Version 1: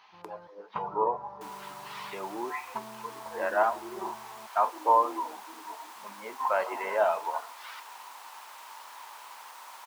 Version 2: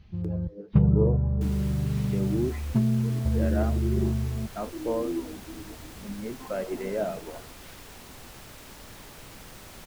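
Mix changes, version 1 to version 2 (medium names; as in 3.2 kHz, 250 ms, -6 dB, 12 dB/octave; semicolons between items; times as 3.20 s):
speech -6.5 dB; second sound +3.5 dB; master: remove resonant high-pass 950 Hz, resonance Q 6.1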